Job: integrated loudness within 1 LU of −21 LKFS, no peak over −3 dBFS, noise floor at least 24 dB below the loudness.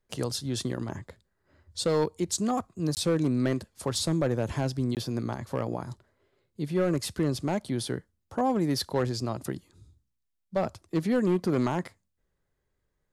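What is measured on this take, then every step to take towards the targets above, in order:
share of clipped samples 0.9%; peaks flattened at −19.0 dBFS; number of dropouts 2; longest dropout 18 ms; integrated loudness −29.5 LKFS; sample peak −19.0 dBFS; target loudness −21.0 LKFS
→ clipped peaks rebuilt −19 dBFS
repair the gap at 0:02.95/0:04.95, 18 ms
level +8.5 dB

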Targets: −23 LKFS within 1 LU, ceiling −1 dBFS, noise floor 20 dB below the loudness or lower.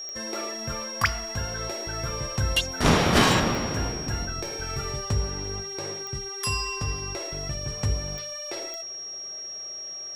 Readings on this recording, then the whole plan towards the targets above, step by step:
number of clicks 5; interfering tone 5,600 Hz; level of the tone −34 dBFS; integrated loudness −27.5 LKFS; sample peak −7.0 dBFS; target loudness −23.0 LKFS
→ click removal
notch filter 5,600 Hz, Q 30
level +4.5 dB

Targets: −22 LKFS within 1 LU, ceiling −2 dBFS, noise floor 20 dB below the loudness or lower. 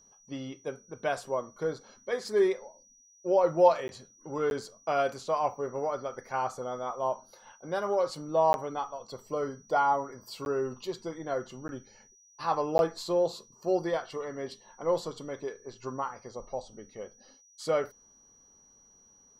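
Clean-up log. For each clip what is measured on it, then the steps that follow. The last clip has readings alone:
number of dropouts 6; longest dropout 11 ms; interfering tone 5,800 Hz; level of the tone −58 dBFS; integrated loudness −31.0 LKFS; sample peak −8.5 dBFS; target loudness −22.0 LKFS
→ repair the gap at 0:03.88/0:04.50/0:08.53/0:10.45/0:11.68/0:12.78, 11 ms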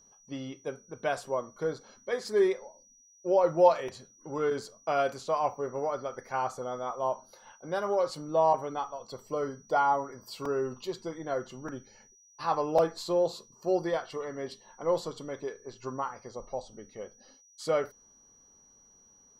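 number of dropouts 0; interfering tone 5,800 Hz; level of the tone −58 dBFS
→ notch filter 5,800 Hz, Q 30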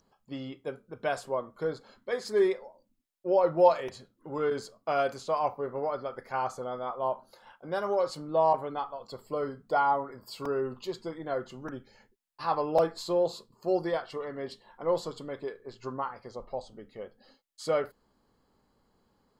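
interfering tone none found; integrated loudness −31.0 LKFS; sample peak −8.5 dBFS; target loudness −22.0 LKFS
→ level +9 dB
brickwall limiter −2 dBFS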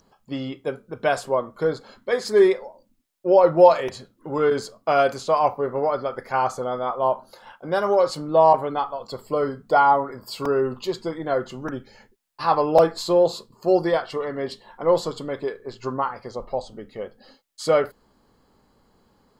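integrated loudness −22.5 LKFS; sample peak −2.0 dBFS; background noise floor −64 dBFS

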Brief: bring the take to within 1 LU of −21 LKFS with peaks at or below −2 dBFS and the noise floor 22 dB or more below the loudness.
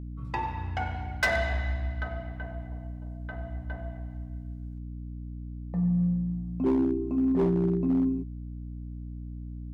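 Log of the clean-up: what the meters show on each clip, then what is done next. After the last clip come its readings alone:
share of clipped samples 0.9%; peaks flattened at −19.5 dBFS; mains hum 60 Hz; hum harmonics up to 300 Hz; level of the hum −36 dBFS; integrated loudness −30.5 LKFS; sample peak −19.5 dBFS; target loudness −21.0 LKFS
→ clipped peaks rebuilt −19.5 dBFS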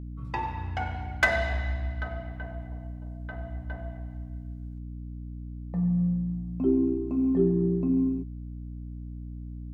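share of clipped samples 0.0%; mains hum 60 Hz; hum harmonics up to 600 Hz; level of the hum −35 dBFS
→ hum removal 60 Hz, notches 10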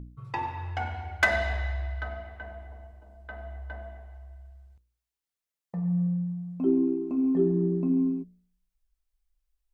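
mains hum none found; integrated loudness −28.0 LKFS; sample peak −10.0 dBFS; target loudness −21.0 LKFS
→ level +7 dB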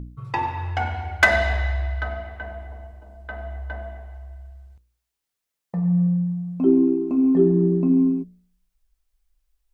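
integrated loudness −21.0 LKFS; sample peak −3.0 dBFS; background noise floor −83 dBFS

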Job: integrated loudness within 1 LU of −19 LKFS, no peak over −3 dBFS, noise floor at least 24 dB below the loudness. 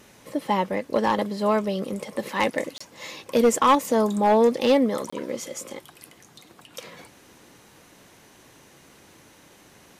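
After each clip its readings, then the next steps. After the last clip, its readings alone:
share of clipped samples 0.6%; peaks flattened at −12.0 dBFS; number of dropouts 2; longest dropout 25 ms; integrated loudness −23.5 LKFS; sample peak −12.0 dBFS; target loudness −19.0 LKFS
→ clipped peaks rebuilt −12 dBFS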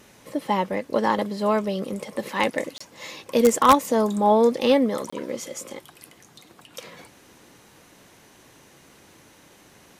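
share of clipped samples 0.0%; number of dropouts 2; longest dropout 25 ms
→ repair the gap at 0:02.78/0:05.10, 25 ms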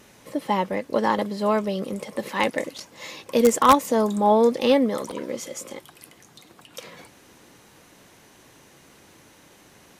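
number of dropouts 0; integrated loudness −22.5 LKFS; sample peak −3.0 dBFS; target loudness −19.0 LKFS
→ level +3.5 dB
brickwall limiter −3 dBFS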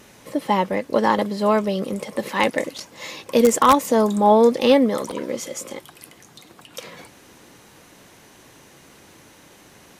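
integrated loudness −19.5 LKFS; sample peak −3.0 dBFS; background noise floor −50 dBFS

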